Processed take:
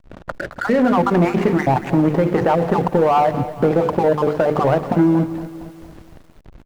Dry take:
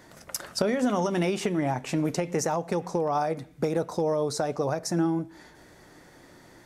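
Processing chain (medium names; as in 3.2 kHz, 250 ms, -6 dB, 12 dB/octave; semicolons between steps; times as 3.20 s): random holes in the spectrogram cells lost 27%; low-pass 1.9 kHz 24 dB/octave; hum notches 50/100/150/200/250/300/350/400/450/500 Hz; waveshaping leveller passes 1; in parallel at -3 dB: compressor with a negative ratio -32 dBFS, ratio -1; on the sum: hysteresis with a dead band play -32 dBFS; on a send: feedback delay 163 ms, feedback 46%, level -22 dB; on the sum: bit-crushed delay 231 ms, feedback 55%, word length 8-bit, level -14 dB; trim +8 dB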